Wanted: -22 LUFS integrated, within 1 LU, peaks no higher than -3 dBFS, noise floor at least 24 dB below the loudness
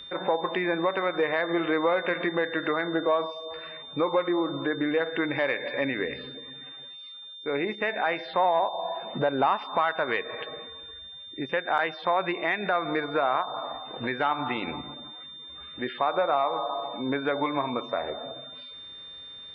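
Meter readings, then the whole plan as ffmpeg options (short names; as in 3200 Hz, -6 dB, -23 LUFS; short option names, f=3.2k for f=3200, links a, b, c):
steady tone 3600 Hz; tone level -41 dBFS; loudness -28.0 LUFS; peak -12.0 dBFS; loudness target -22.0 LUFS
-> -af "bandreject=f=3.6k:w=30"
-af "volume=6dB"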